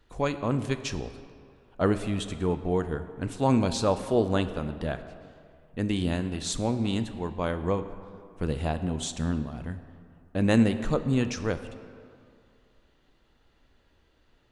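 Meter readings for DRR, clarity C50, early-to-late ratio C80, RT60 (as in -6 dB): 9.5 dB, 11.0 dB, 12.0 dB, 2.3 s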